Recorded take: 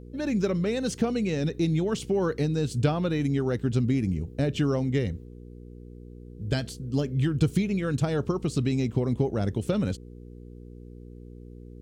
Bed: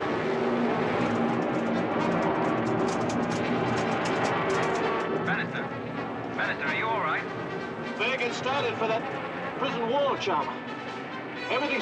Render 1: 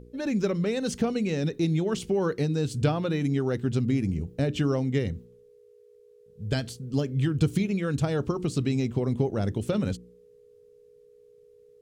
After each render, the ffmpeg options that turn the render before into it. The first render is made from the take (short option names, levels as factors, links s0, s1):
-af "bandreject=f=60:t=h:w=4,bandreject=f=120:t=h:w=4,bandreject=f=180:t=h:w=4,bandreject=f=240:t=h:w=4,bandreject=f=300:t=h:w=4,bandreject=f=360:t=h:w=4"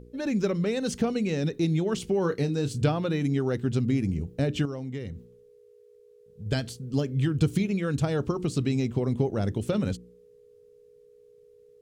-filter_complex "[0:a]asettb=1/sr,asplit=3[s0][s1][s2];[s0]atrim=end=2.214[s3];[s1]atrim=start=2.21:end=2.85,asetpts=PTS-STARTPTS,afade=t=in:d=0.004:c=qsin,afade=t=out:st=0.636:d=0.004:c=qsin,asplit=2[s4][s5];[s5]adelay=29,volume=0.282[s6];[s4][s6]amix=inputs=2:normalize=0,atrim=end_sample=28224[s7];[s2]atrim=start=2.846[s8];[s3][s7]acrossfade=d=0.004:c1=hsin:c2=qsin[s9];[s9][s8]acrossfade=d=0.004:c1=qsin:c2=hsin,asettb=1/sr,asplit=3[s10][s11][s12];[s10]atrim=end=4.654[s13];[s11]atrim=start=4.65:end=6.46,asetpts=PTS-STARTPTS,afade=t=in:d=0.004:c=qsin,afade=t=out:st=1.806:d=0.004:c=qsin,acompressor=threshold=0.0141:ratio=2:attack=3.2:release=140:knee=1:detection=peak[s14];[s12]atrim=start=6.456[s15];[s13][s14]acrossfade=d=0.004:c1=hsin:c2=qsin[s16];[s16][s15]acrossfade=d=0.004:c1=qsin:c2=hsin"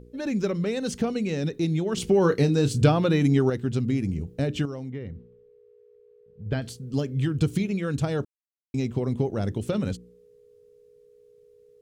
-filter_complex "[0:a]asettb=1/sr,asplit=3[s0][s1][s2];[s0]atrim=end=1.974[s3];[s1]atrim=start=1.97:end=3.5,asetpts=PTS-STARTPTS,afade=t=in:d=0.004:c=qsin,afade=t=out:st=1.526:d=0.004:c=qsin,acontrast=47[s4];[s2]atrim=start=3.496[s5];[s3][s4]acrossfade=d=0.004:c1=hsin:c2=qsin[s6];[s6][s5]acrossfade=d=0.004:c1=qsin:c2=hsin,asettb=1/sr,asplit=3[s7][s8][s9];[s7]atrim=end=4.904[s10];[s8]atrim=start=4.9:end=6.62,asetpts=PTS-STARTPTS,afade=t=in:d=0.004:c=qsin,afade=t=out:st=1.716:d=0.004:c=qsin,lowpass=2300[s11];[s9]atrim=start=6.616[s12];[s10][s11]acrossfade=d=0.004:c1=hsin:c2=qsin[s13];[s13][s12]acrossfade=d=0.004:c1=qsin:c2=hsin,asplit=3[s14][s15][s16];[s14]atrim=end=8.25,asetpts=PTS-STARTPTS,afade=t=out:st=8.246:d=0.004:c=hsin[s17];[s15]atrim=start=8.25:end=8.74,asetpts=PTS-STARTPTS,volume=0[s18];[s16]atrim=start=8.74,asetpts=PTS-STARTPTS,afade=t=in:d=0.004:c=hsin[s19];[s17][s18][s19]concat=n=3:v=0:a=1"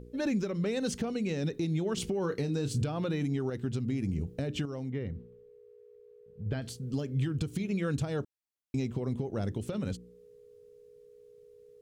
-af "acompressor=threshold=0.0708:ratio=6,alimiter=limit=0.0794:level=0:latency=1:release=369"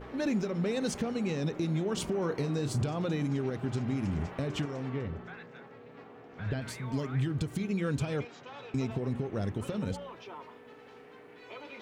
-filter_complex "[1:a]volume=0.112[s0];[0:a][s0]amix=inputs=2:normalize=0"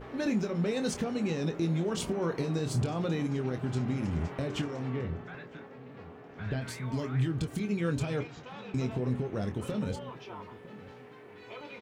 -filter_complex "[0:a]asplit=2[s0][s1];[s1]adelay=24,volume=0.376[s2];[s0][s2]amix=inputs=2:normalize=0,asplit=2[s3][s4];[s4]adelay=957,lowpass=f=1100:p=1,volume=0.141,asplit=2[s5][s6];[s6]adelay=957,lowpass=f=1100:p=1,volume=0.32,asplit=2[s7][s8];[s8]adelay=957,lowpass=f=1100:p=1,volume=0.32[s9];[s3][s5][s7][s9]amix=inputs=4:normalize=0"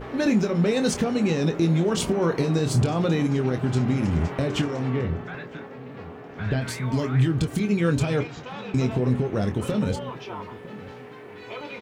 -af "volume=2.66"